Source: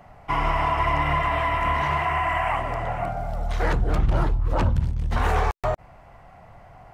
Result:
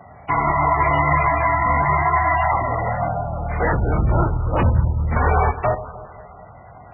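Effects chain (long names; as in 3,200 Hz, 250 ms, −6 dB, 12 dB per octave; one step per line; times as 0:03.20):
high-pass filter 55 Hz 24 dB per octave
delay that swaps between a low-pass and a high-pass 103 ms, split 900 Hz, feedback 75%, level −13 dB
level +5.5 dB
MP3 8 kbit/s 16,000 Hz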